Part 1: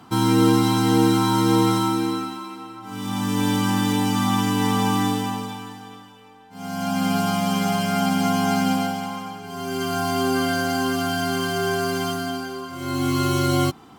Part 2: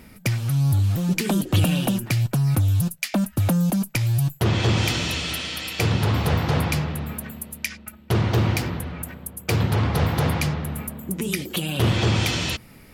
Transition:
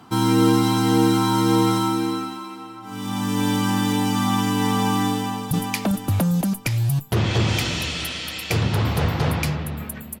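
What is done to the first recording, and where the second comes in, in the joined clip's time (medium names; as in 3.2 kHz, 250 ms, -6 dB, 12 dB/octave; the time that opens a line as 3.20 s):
part 1
5.13–5.51 s: echo throw 400 ms, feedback 45%, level -2 dB
5.51 s: go over to part 2 from 2.80 s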